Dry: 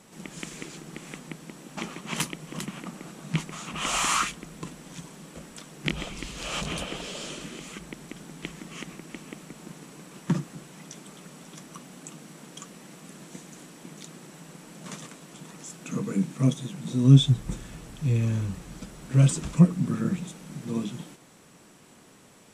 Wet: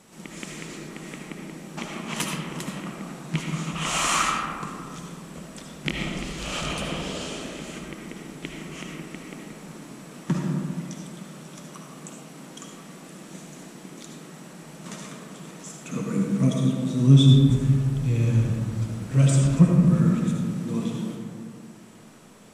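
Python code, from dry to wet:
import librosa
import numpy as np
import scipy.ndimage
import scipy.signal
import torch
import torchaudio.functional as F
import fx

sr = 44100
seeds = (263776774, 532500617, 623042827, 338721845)

y = fx.rev_freeverb(x, sr, rt60_s=2.3, hf_ratio=0.3, predelay_ms=35, drr_db=-0.5)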